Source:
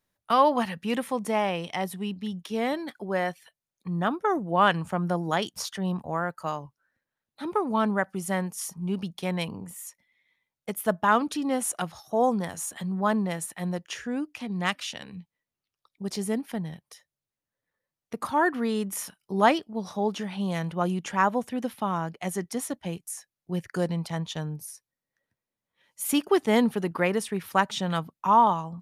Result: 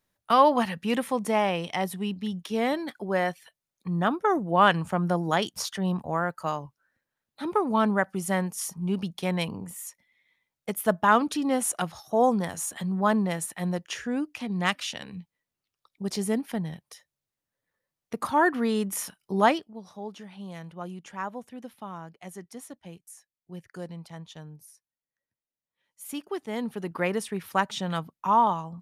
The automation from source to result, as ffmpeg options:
-af "volume=3.35,afade=t=out:st=19.33:d=0.47:silence=0.237137,afade=t=in:st=26.56:d=0.51:silence=0.354813"

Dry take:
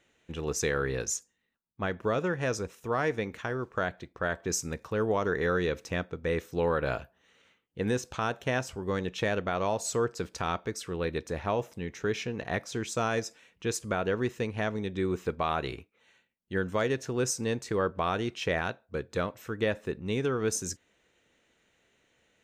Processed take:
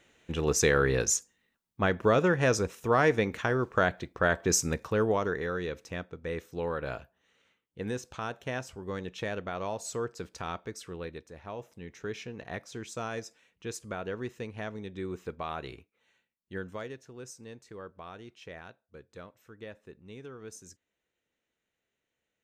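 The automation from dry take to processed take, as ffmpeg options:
-af "volume=4.22,afade=t=out:st=4.69:d=0.77:silence=0.298538,afade=t=out:st=10.88:d=0.43:silence=0.354813,afade=t=in:st=11.31:d=0.64:silence=0.421697,afade=t=out:st=16.53:d=0.49:silence=0.354813"

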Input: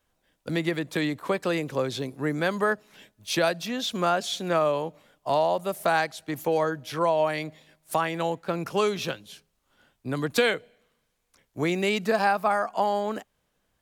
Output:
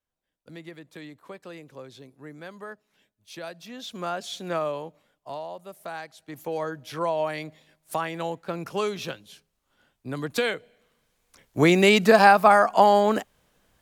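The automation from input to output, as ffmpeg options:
-af "volume=7.08,afade=t=in:st=3.37:d=1.16:silence=0.266073,afade=t=out:st=4.53:d=0.88:silence=0.354813,afade=t=in:st=6.02:d=0.9:silence=0.316228,afade=t=in:st=10.55:d=1.09:silence=0.281838"

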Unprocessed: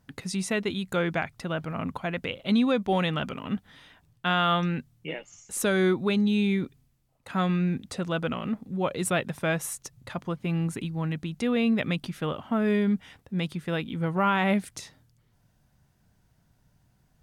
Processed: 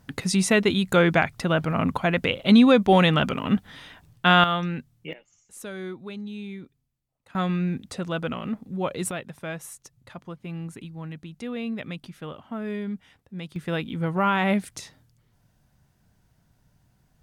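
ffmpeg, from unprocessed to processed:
-af "asetnsamples=n=441:p=0,asendcmd='4.44 volume volume -1dB;5.13 volume volume -12dB;7.35 volume volume 0dB;9.11 volume volume -7dB;13.56 volume volume 1.5dB',volume=2.51"

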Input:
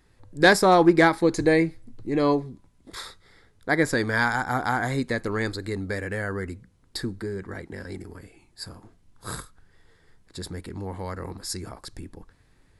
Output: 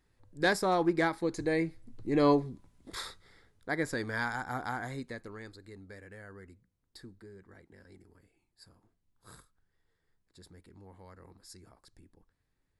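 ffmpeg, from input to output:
-af "volume=0.75,afade=t=in:st=1.49:d=0.78:silence=0.375837,afade=t=out:st=3.05:d=0.68:silence=0.398107,afade=t=out:st=4.63:d=0.79:silence=0.354813"

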